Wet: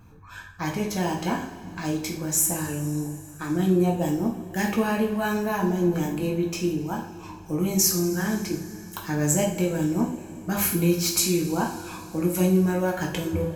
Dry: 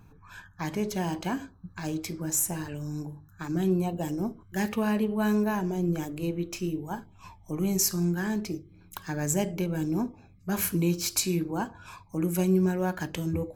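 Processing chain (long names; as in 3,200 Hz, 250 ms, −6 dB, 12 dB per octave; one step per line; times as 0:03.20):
coupled-rooms reverb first 0.43 s, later 3.8 s, from −19 dB, DRR −1 dB
level +2 dB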